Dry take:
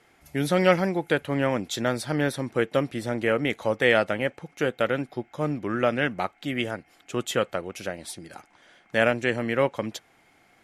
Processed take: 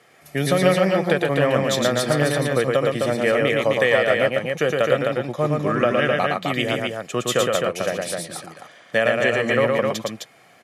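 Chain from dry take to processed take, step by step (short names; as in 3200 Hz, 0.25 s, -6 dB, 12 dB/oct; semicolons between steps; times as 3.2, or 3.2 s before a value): HPF 120 Hz 24 dB/oct; comb 1.7 ms, depth 44%; compressor, threshold -21 dBFS, peak gain reduction 10 dB; on a send: loudspeakers at several distances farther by 39 m -3 dB, 89 m -4 dB; on the sum: gain +5.5 dB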